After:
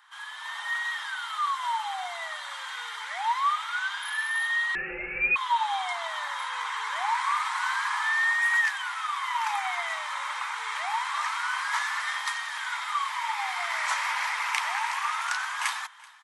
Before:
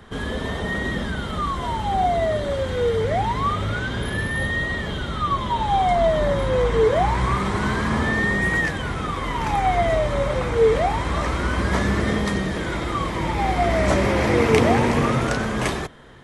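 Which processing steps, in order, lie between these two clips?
Chebyshev high-pass filter 890 Hz, order 5
automatic gain control gain up to 6 dB
single-tap delay 382 ms −23 dB
0:04.75–0:05.36: voice inversion scrambler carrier 3,600 Hz
level −6.5 dB

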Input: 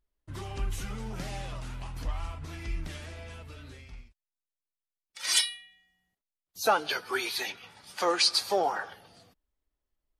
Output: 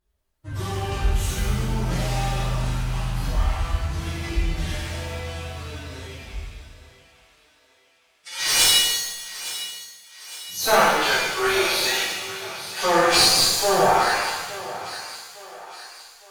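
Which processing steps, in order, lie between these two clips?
hum removal 238.1 Hz, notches 13
phase-vocoder stretch with locked phases 1.6×
asymmetric clip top −32 dBFS
on a send: feedback echo with a high-pass in the loop 861 ms, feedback 49%, high-pass 360 Hz, level −14 dB
on the sum: reverb with rising layers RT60 1.1 s, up +7 semitones, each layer −8 dB, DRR −7 dB
level +3.5 dB

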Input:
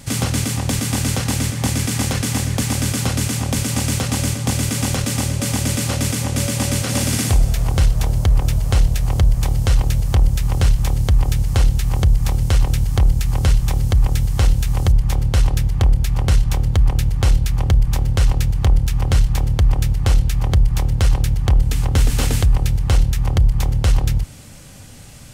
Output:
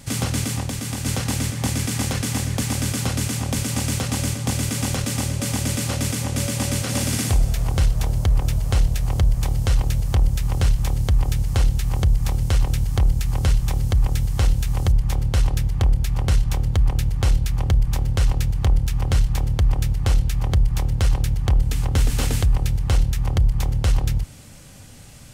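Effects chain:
0:00.61–0:01.06: downward compressor, threshold −20 dBFS, peak gain reduction 5.5 dB
level −3.5 dB

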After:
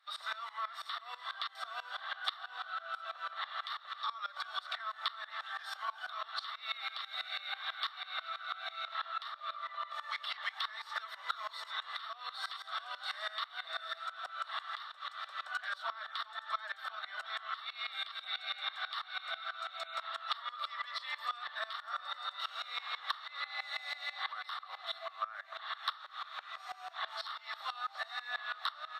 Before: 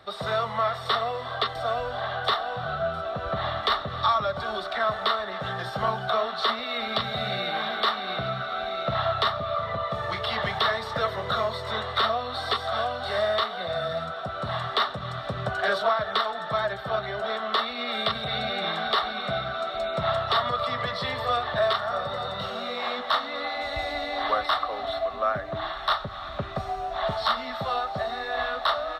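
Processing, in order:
high-pass filter 1,100 Hz 24 dB per octave
downward compressor 10 to 1, threshold −32 dBFS, peak gain reduction 12 dB
tremolo with a ramp in dB swelling 6.1 Hz, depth 20 dB
level +2 dB

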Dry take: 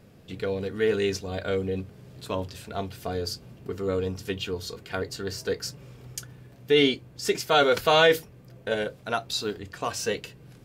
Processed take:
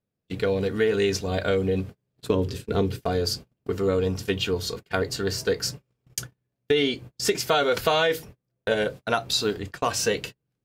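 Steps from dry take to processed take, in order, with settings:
noise gate −40 dBFS, range −37 dB
0:02.28–0:03.01: low shelf with overshoot 530 Hz +6 dB, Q 3
downward compressor 10 to 1, threshold −24 dBFS, peak gain reduction 10.5 dB
level +6 dB

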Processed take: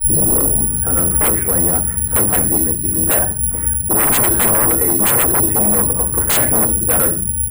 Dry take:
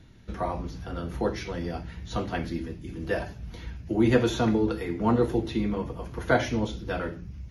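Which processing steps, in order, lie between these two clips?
turntable start at the beginning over 0.84 s
low-pass filter 1,700 Hz 24 dB per octave
sine wavefolder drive 19 dB, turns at −8 dBFS
bad sample-rate conversion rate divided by 4×, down filtered, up zero stuff
level −8 dB

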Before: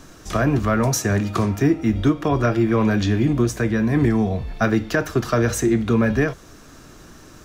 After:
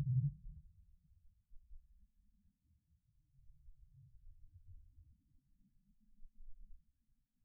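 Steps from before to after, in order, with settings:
Chebyshev band-stop filter 210–1,700 Hz, order 2
reversed playback
upward compression, threshold −39 dBFS
reversed playback
extreme stretch with random phases 24×, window 0.10 s, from 0:06.34
soft clipping −35 dBFS, distortion −18 dB
every bin expanded away from the loudest bin 4 to 1
level +8.5 dB

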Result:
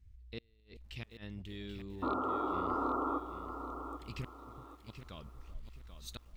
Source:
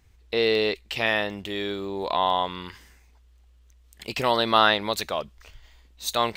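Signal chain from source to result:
spectral tilt −2.5 dB per octave
gate with flip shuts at −12 dBFS, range −35 dB
delay that swaps between a low-pass and a high-pass 384 ms, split 880 Hz, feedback 54%, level −13.5 dB
sound drawn into the spectrogram noise, 0:02.02–0:03.19, 250–1,400 Hz −12 dBFS
guitar amp tone stack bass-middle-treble 6-0-2
feedback echo at a low word length 785 ms, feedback 35%, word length 11 bits, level −9 dB
level +2.5 dB

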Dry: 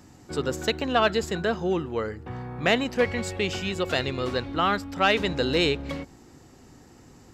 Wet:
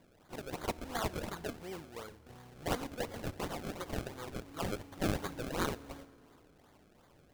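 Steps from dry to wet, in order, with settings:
first-order pre-emphasis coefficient 0.9
sample-and-hold swept by an LFO 32×, swing 100% 2.8 Hz
feedback delay network reverb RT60 2.3 s, low-frequency decay 1.05×, high-frequency decay 0.75×, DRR 18.5 dB

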